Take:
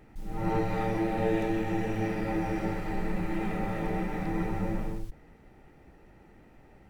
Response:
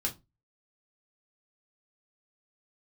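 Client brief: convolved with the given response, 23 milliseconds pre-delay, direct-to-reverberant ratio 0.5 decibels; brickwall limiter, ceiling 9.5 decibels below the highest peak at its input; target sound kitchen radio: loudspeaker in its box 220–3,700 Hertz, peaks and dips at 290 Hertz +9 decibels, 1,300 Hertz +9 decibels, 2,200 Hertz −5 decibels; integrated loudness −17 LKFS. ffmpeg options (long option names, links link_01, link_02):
-filter_complex "[0:a]alimiter=level_in=1dB:limit=-24dB:level=0:latency=1,volume=-1dB,asplit=2[link_01][link_02];[1:a]atrim=start_sample=2205,adelay=23[link_03];[link_02][link_03]afir=irnorm=-1:irlink=0,volume=-4dB[link_04];[link_01][link_04]amix=inputs=2:normalize=0,highpass=220,equalizer=frequency=290:width_type=q:width=4:gain=9,equalizer=frequency=1300:width_type=q:width=4:gain=9,equalizer=frequency=2200:width_type=q:width=4:gain=-5,lowpass=frequency=3700:width=0.5412,lowpass=frequency=3700:width=1.3066,volume=12.5dB"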